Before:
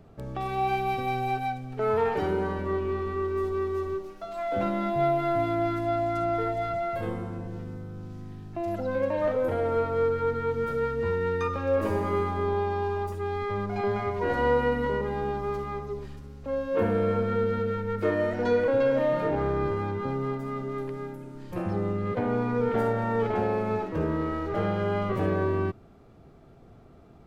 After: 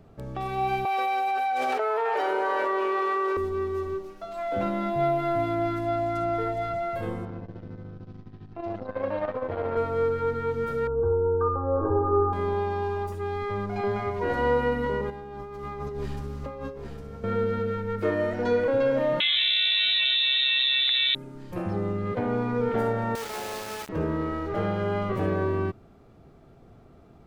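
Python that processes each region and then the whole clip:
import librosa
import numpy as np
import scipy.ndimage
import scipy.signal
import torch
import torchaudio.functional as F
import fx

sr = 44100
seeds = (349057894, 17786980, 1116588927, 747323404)

y = fx.chain(x, sr, fx.highpass(hz=500.0, slope=24),
    fx.high_shelf(hz=4000.0, db=-5.5),
    fx.env_flatten(amount_pct=100), at=(0.85, 3.37))
y = fx.chain(y, sr, fx.lowpass(hz=4900.0, slope=24),
    fx.transformer_sat(knee_hz=460.0), at=(7.25, 9.77))
y = fx.chain(y, sr, fx.brickwall_lowpass(high_hz=1600.0),
    fx.comb(ms=2.5, depth=0.83), at=(10.87, 12.33))
y = fx.chain(y, sr, fx.over_compress(threshold_db=-38.0, ratio=-1.0),
    fx.echo_single(ms=808, db=-6.5), at=(15.1, 17.24))
y = fx.chain(y, sr, fx.peak_eq(hz=1800.0, db=11.0, octaves=0.67),
    fx.freq_invert(carrier_hz=3900),
    fx.env_flatten(amount_pct=100), at=(19.2, 21.15))
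y = fx.chain(y, sr, fx.cvsd(bps=32000),
    fx.highpass(hz=1300.0, slope=6),
    fx.quant_dither(seeds[0], bits=6, dither='none'), at=(23.15, 23.89))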